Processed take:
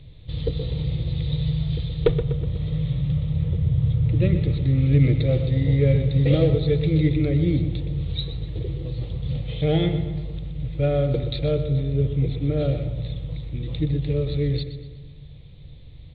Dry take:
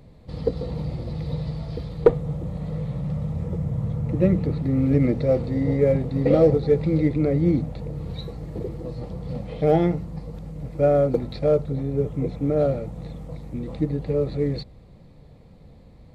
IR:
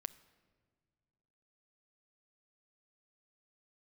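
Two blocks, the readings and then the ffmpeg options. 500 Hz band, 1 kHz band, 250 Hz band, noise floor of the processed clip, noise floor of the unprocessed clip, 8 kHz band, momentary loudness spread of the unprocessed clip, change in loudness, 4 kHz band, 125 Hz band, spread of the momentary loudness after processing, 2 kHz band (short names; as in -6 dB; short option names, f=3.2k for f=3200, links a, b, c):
-4.5 dB, -8.5 dB, -1.5 dB, -43 dBFS, -48 dBFS, n/a, 14 LU, +0.5 dB, +10.0 dB, +5.0 dB, 12 LU, +2.5 dB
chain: -filter_complex "[0:a]firequalizer=gain_entry='entry(130,0);entry(210,-17);entry(310,-9);entry(820,-17);entry(3600,14);entry(5200,-15)':delay=0.05:min_phase=1,asplit=2[a][b];[b]adelay=123,lowpass=f=3.8k:p=1,volume=-10dB,asplit=2[c][d];[d]adelay=123,lowpass=f=3.8k:p=1,volume=0.54,asplit=2[e][f];[f]adelay=123,lowpass=f=3.8k:p=1,volume=0.54,asplit=2[g][h];[h]adelay=123,lowpass=f=3.8k:p=1,volume=0.54,asplit=2[i][j];[j]adelay=123,lowpass=f=3.8k:p=1,volume=0.54,asplit=2[k][l];[l]adelay=123,lowpass=f=3.8k:p=1,volume=0.54[m];[a][c][e][g][i][k][m]amix=inputs=7:normalize=0,asplit=2[n][o];[1:a]atrim=start_sample=2205,lowpass=3.4k[p];[o][p]afir=irnorm=-1:irlink=0,volume=4dB[q];[n][q]amix=inputs=2:normalize=0"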